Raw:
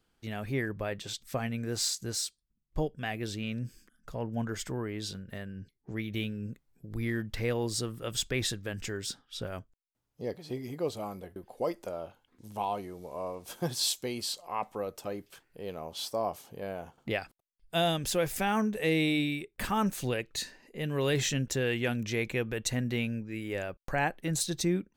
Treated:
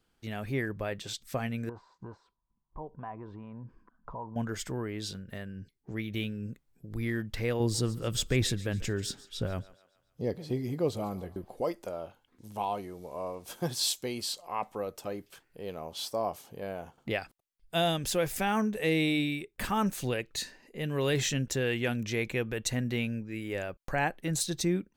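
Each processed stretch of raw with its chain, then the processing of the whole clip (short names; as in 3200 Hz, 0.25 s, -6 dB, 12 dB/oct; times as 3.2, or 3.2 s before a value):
1.69–4.36 compressor 12:1, threshold -39 dBFS + synth low-pass 990 Hz, resonance Q 12
7.6–11.61 low shelf 320 Hz +8.5 dB + thinning echo 0.141 s, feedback 50%, high-pass 410 Hz, level -18.5 dB
whole clip: dry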